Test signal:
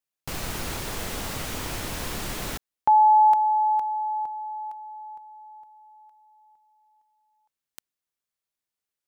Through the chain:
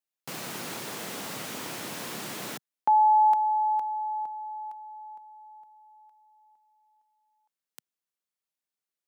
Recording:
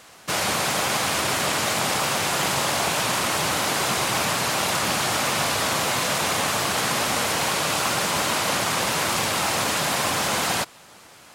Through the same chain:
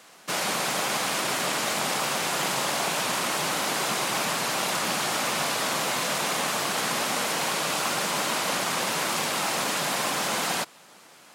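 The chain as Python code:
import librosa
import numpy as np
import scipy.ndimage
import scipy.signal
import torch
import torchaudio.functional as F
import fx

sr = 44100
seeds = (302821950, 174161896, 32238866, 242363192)

y = scipy.signal.sosfilt(scipy.signal.butter(4, 150.0, 'highpass', fs=sr, output='sos'), x)
y = F.gain(torch.from_numpy(y), -3.5).numpy()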